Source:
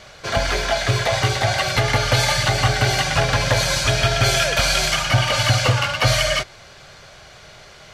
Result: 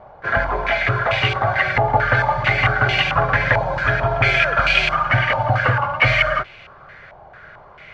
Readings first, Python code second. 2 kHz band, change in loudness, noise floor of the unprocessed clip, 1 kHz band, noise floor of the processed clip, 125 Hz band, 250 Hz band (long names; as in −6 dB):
+4.5 dB, +1.0 dB, −44 dBFS, +4.0 dB, −44 dBFS, −2.0 dB, −2.0 dB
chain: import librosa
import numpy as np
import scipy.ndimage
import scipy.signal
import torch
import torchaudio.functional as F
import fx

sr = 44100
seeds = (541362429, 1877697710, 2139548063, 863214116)

y = fx.filter_held_lowpass(x, sr, hz=4.5, low_hz=860.0, high_hz=2600.0)
y = F.gain(torch.from_numpy(y), -2.0).numpy()